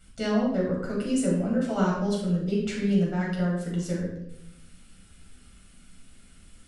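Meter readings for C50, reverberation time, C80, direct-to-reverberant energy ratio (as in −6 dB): 2.5 dB, 0.85 s, 5.5 dB, −4.5 dB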